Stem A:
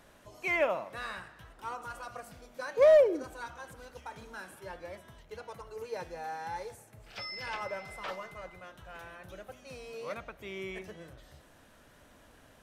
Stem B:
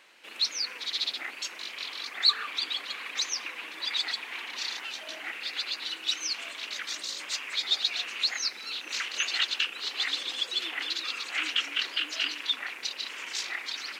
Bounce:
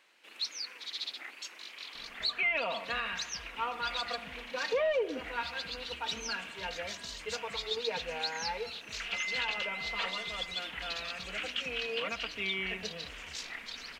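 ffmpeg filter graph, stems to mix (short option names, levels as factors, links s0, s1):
-filter_complex "[0:a]lowpass=f=2800:t=q:w=5.2,aecho=1:1:4.3:0.74,adelay=1950,volume=1.06[s0];[1:a]volume=0.398[s1];[s0][s1]amix=inputs=2:normalize=0,alimiter=limit=0.075:level=0:latency=1:release=264"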